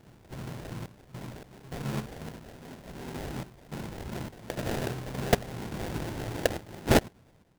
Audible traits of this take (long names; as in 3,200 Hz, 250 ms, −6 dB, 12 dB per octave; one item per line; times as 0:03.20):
sample-and-hold tremolo, depth 85%
phaser sweep stages 2, 2.7 Hz, lowest notch 220–3,400 Hz
aliases and images of a low sample rate 1,200 Hz, jitter 20%